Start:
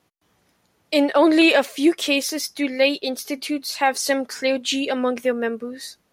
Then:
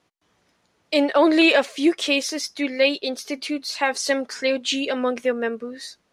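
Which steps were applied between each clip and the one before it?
low-pass filter 7,800 Hz 12 dB per octave
parametric band 100 Hz −4 dB 2.9 octaves
notch filter 800 Hz, Q 22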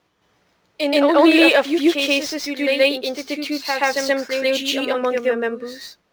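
running median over 5 samples
parametric band 250 Hz −5 dB 0.24 octaves
on a send: backwards echo 129 ms −4 dB
on the sum: level +2.5 dB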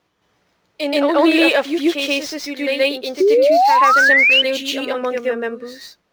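sound drawn into the spectrogram rise, 0:03.20–0:04.42, 360–3,100 Hz −11 dBFS
level −1 dB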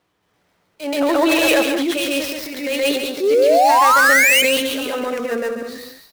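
gap after every zero crossing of 0.06 ms
transient designer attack −9 dB, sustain +6 dB
on a send: loudspeakers that aren't time-aligned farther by 48 metres −8 dB, 70 metres −11 dB
on the sum: level −1 dB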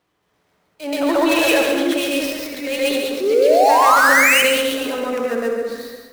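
convolution reverb RT60 1.3 s, pre-delay 52 ms, DRR 3.5 dB
level −2 dB

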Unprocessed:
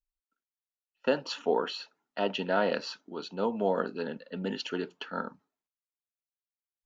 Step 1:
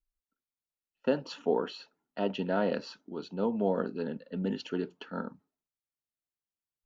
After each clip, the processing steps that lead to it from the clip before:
low-shelf EQ 470 Hz +12 dB
level −7 dB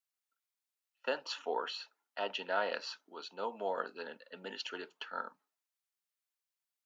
high-pass filter 910 Hz 12 dB per octave
level +3 dB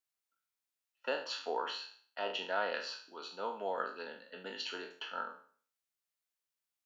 peak hold with a decay on every bin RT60 0.47 s
level −2 dB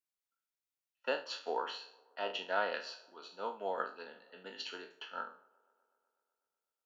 delay with a band-pass on its return 124 ms, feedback 74%, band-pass 590 Hz, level −20.5 dB
expander for the loud parts 1.5 to 1, over −47 dBFS
level +2 dB

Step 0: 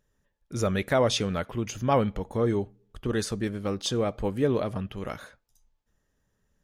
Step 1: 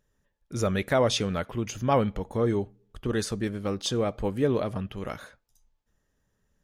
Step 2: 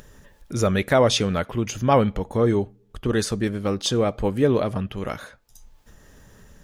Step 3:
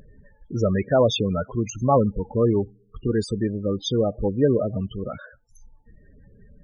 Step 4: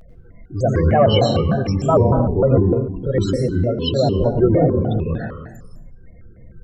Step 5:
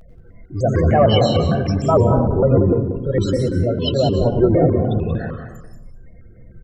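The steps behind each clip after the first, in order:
no processing that can be heard
upward compression, threshold −38 dBFS; level +5.5 dB
spectral peaks only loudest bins 16
convolution reverb RT60 1.0 s, pre-delay 97 ms, DRR 2 dB; pitch modulation by a square or saw wave square 3.3 Hz, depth 250 cents
single-tap delay 183 ms −9.5 dB

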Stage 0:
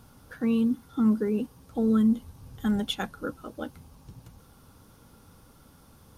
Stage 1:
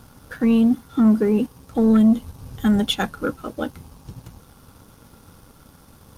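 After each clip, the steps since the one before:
leveller curve on the samples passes 1
level +5.5 dB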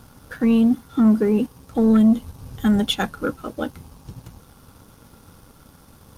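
no processing that can be heard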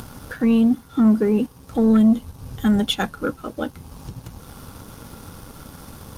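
upward compression, threshold −28 dBFS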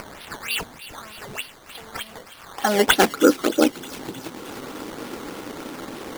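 high-pass filter sweep 2,900 Hz → 330 Hz, 0:02.14–0:02.93
sample-and-hold swept by an LFO 12×, swing 100% 3.3 Hz
delay with a high-pass on its return 311 ms, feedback 65%, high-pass 2,400 Hz, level −13 dB
level +6 dB

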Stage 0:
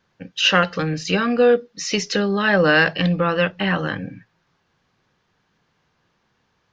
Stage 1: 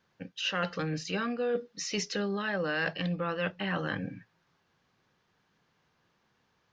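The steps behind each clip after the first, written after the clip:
low-shelf EQ 63 Hz −6.5 dB
reversed playback
downward compressor 5 to 1, threshold −24 dBFS, peak gain reduction 12 dB
reversed playback
level −5 dB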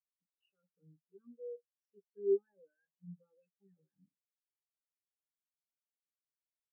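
brickwall limiter −27.5 dBFS, peak gain reduction 9.5 dB
hollow resonant body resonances 390/830/2,600 Hz, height 9 dB, ringing for 80 ms
every bin expanded away from the loudest bin 4 to 1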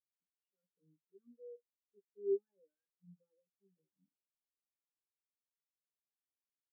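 resonant band-pass 330 Hz, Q 1.7
level −2.5 dB

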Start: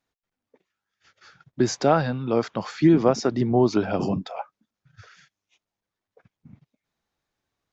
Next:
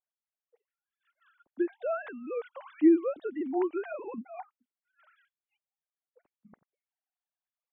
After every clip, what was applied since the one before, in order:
three sine waves on the formant tracks
level −8 dB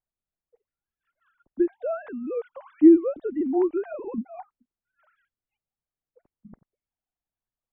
spectral tilt −4.5 dB per octave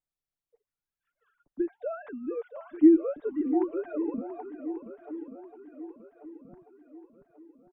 comb filter 6.9 ms, depth 38%
on a send: feedback echo with a long and a short gap by turns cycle 1,137 ms, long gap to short 1.5 to 1, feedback 43%, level −11 dB
on the sum: level −4.5 dB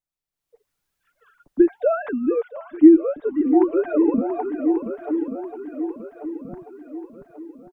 automatic gain control gain up to 16 dB
level −1 dB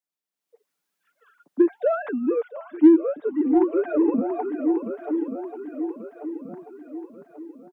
Butterworth high-pass 170 Hz
in parallel at −9 dB: soft clipping −16.5 dBFS, distortion −6 dB
on the sum: level −4 dB

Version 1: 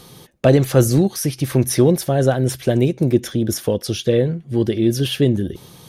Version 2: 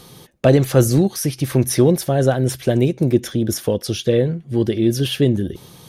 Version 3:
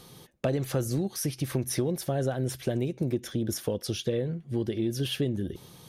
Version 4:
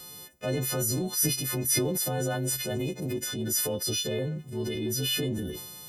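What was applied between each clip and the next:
no processing that can be heard
downward compressor, threshold −17 dBFS, peak gain reduction 9.5 dB; level −7.5 dB
every partial snapped to a pitch grid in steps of 3 semitones; transient designer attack −6 dB, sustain +6 dB; level −1 dB

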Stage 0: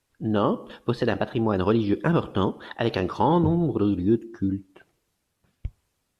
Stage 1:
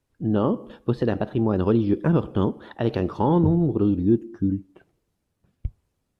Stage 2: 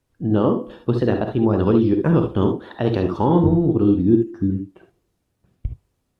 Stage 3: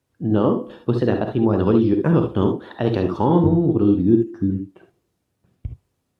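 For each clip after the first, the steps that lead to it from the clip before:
tilt shelving filter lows +5.5 dB, about 730 Hz; level −2 dB
reverb whose tail is shaped and stops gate 90 ms rising, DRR 5.5 dB; level +2.5 dB
high-pass filter 72 Hz

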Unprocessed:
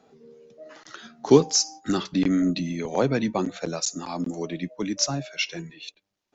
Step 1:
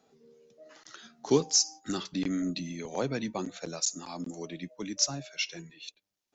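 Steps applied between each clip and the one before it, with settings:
high-shelf EQ 4,100 Hz +10 dB
level −9 dB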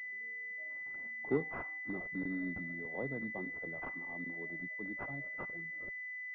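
switching amplifier with a slow clock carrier 2,000 Hz
level −8.5 dB

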